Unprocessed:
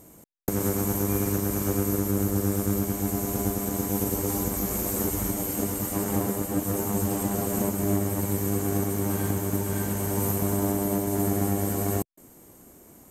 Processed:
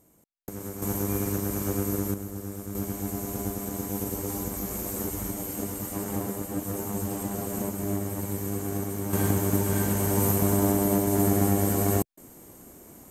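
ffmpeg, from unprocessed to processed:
-af "asetnsamples=n=441:p=0,asendcmd='0.82 volume volume -2.5dB;2.14 volume volume -11dB;2.75 volume volume -4.5dB;9.13 volume volume 2.5dB',volume=-11dB"

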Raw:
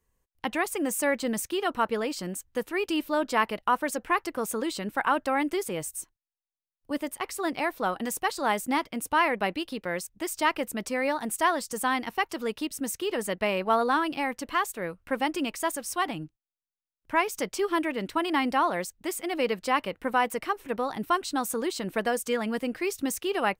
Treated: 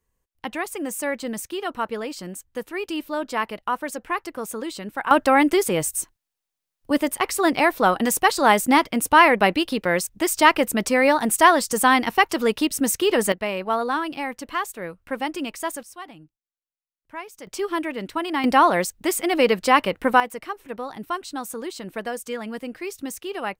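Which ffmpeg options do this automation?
-af "asetnsamples=n=441:p=0,asendcmd='5.11 volume volume 10dB;13.32 volume volume 0.5dB;15.83 volume volume -10.5dB;17.47 volume volume 1dB;18.44 volume volume 9dB;20.2 volume volume -2.5dB',volume=-0.5dB"

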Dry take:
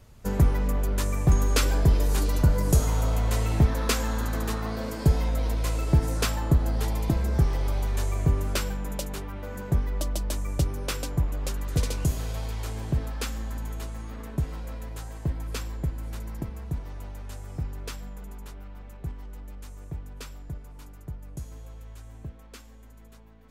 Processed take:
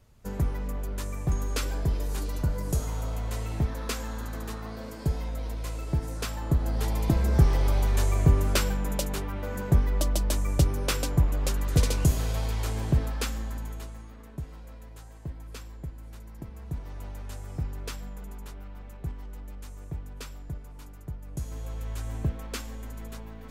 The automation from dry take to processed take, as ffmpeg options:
-af "volume=23dB,afade=t=in:st=6.26:d=1.23:silence=0.316228,afade=t=out:st=12.9:d=1.24:silence=0.251189,afade=t=in:st=16.34:d=0.75:silence=0.354813,afade=t=in:st=21.25:d=0.87:silence=0.281838"

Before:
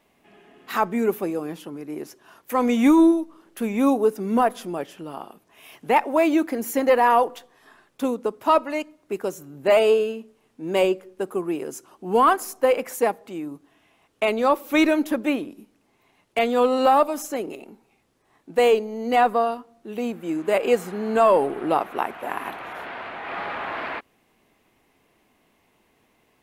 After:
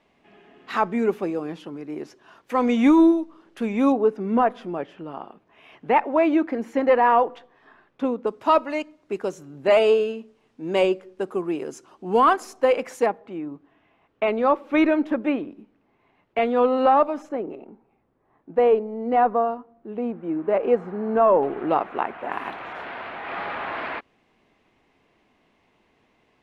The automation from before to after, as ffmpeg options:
-af "asetnsamples=n=441:p=0,asendcmd='3.92 lowpass f 2500;8.27 lowpass f 5800;13.06 lowpass f 2200;17.29 lowpass f 1300;21.43 lowpass f 2700;22.32 lowpass f 4700',lowpass=4.8k"

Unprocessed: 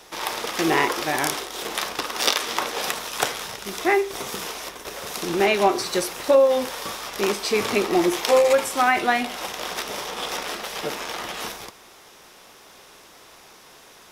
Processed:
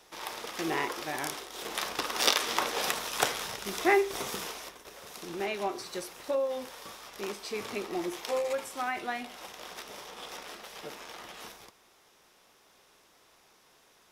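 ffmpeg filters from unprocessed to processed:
-af "volume=-4dB,afade=t=in:st=1.44:d=0.69:silence=0.446684,afade=t=out:st=4.23:d=0.61:silence=0.316228"

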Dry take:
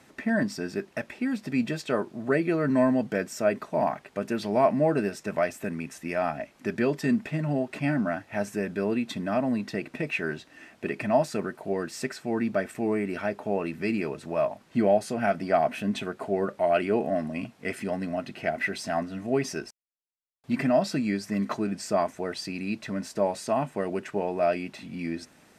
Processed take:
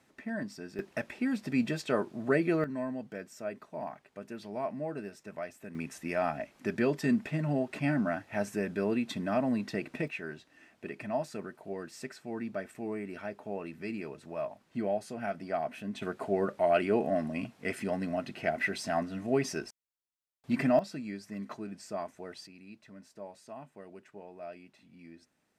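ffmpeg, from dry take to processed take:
-af "asetnsamples=n=441:p=0,asendcmd='0.79 volume volume -2.5dB;2.64 volume volume -13.5dB;5.75 volume volume -3dB;10.08 volume volume -10dB;16.02 volume volume -2.5dB;20.79 volume volume -12dB;22.47 volume volume -19.5dB',volume=-11dB"

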